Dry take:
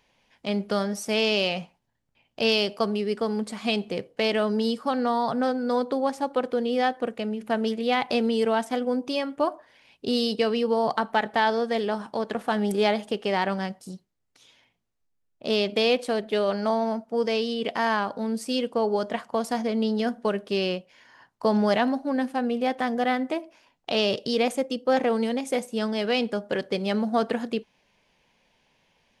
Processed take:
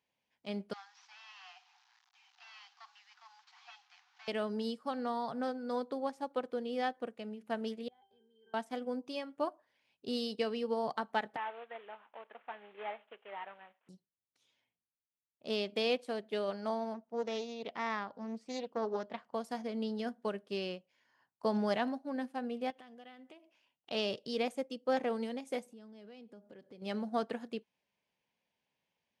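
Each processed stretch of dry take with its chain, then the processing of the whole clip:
0.73–4.28 delta modulation 32 kbps, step -39 dBFS + Chebyshev high-pass 730 Hz, order 10
7.88–8.54 bell 190 Hz -13.5 dB 0.96 oct + octave resonator G, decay 0.38 s
11.36–13.89 CVSD 16 kbps + HPF 700 Hz
16.94–19.34 LPF 4200 Hz + Doppler distortion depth 0.33 ms
22.7–23.91 bell 2900 Hz +10.5 dB 0.55 oct + compressor 4:1, threshold -35 dBFS
25.66–26.82 bell 210 Hz +8 dB 2.9 oct + compressor 4:1, threshold -36 dBFS
whole clip: HPF 84 Hz; upward expander 1.5:1, over -39 dBFS; gain -9 dB

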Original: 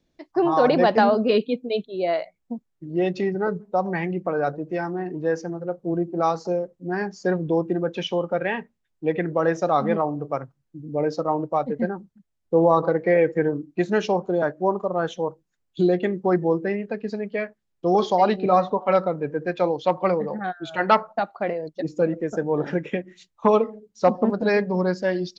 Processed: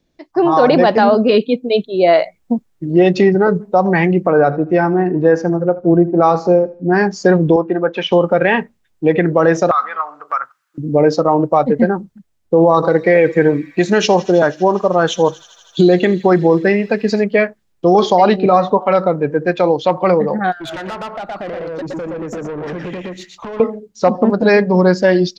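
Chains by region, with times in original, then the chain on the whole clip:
4.3–6.95 LPF 2000 Hz 6 dB/oct + feedback echo 77 ms, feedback 33%, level -19 dB
7.56–8.12 LPF 1500 Hz + tilt +4.5 dB/oct
9.71–10.78 compressor 4:1, threshold -31 dBFS + resonant high-pass 1300 Hz, resonance Q 5.8
12.74–17.24 high shelf 2800 Hz +8.5 dB + thin delay 81 ms, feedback 85%, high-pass 3600 Hz, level -15.5 dB
20.52–23.6 echo 0.118 s -4 dB + compressor 12:1, threshold -32 dBFS + tube stage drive 37 dB, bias 0.2
whole clip: AGC gain up to 11.5 dB; maximiser +5.5 dB; gain -1 dB

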